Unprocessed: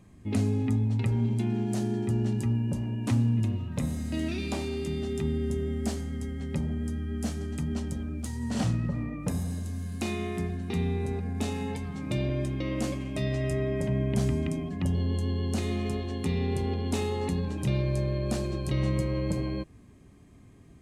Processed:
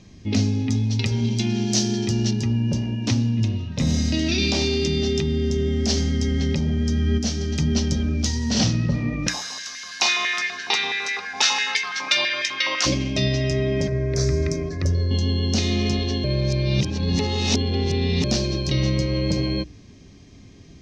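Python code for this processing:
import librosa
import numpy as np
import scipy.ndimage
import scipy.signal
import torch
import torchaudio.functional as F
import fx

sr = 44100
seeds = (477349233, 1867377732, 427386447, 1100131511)

y = fx.high_shelf(x, sr, hz=3100.0, db=11.0, at=(0.7, 2.31))
y = fx.env_flatten(y, sr, amount_pct=100, at=(3.79, 7.17), fade=0.02)
y = fx.filter_held_highpass(y, sr, hz=12.0, low_hz=930.0, high_hz=1900.0, at=(9.26, 12.85), fade=0.02)
y = fx.fixed_phaser(y, sr, hz=820.0, stages=6, at=(13.87, 15.11))
y = fx.edit(y, sr, fx.reverse_span(start_s=16.24, length_s=2.0), tone=tone)
y = fx.hum_notches(y, sr, base_hz=60, count=7)
y = fx.rider(y, sr, range_db=10, speed_s=0.5)
y = fx.curve_eq(y, sr, hz=(430.0, 1200.0, 5800.0, 9000.0), db=(0, -5, 14, -17))
y = y * 10.0 ** (5.0 / 20.0)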